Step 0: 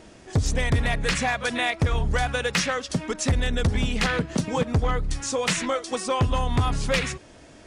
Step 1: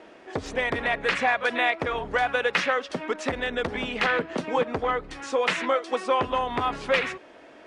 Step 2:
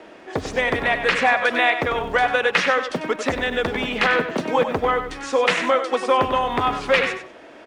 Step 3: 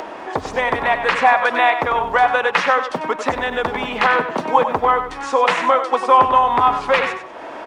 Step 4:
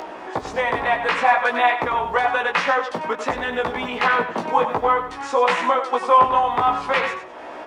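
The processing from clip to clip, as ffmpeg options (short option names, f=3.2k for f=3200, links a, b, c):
-filter_complex "[0:a]acrossover=split=280 3300:gain=0.0708 1 0.112[a][b][c];[a][b][c]amix=inputs=3:normalize=0,volume=3dB"
-filter_complex "[0:a]acrossover=split=230|2500[a][b][c];[a]acrusher=bits=5:mode=log:mix=0:aa=0.000001[d];[d][b][c]amix=inputs=3:normalize=0,aecho=1:1:96|192|288:0.335|0.0603|0.0109,volume=5dB"
-af "equalizer=f=950:t=o:w=1:g=12,acompressor=mode=upward:threshold=-20dB:ratio=2.5,volume=-2dB"
-af "flanger=delay=16:depth=2.3:speed=0.53"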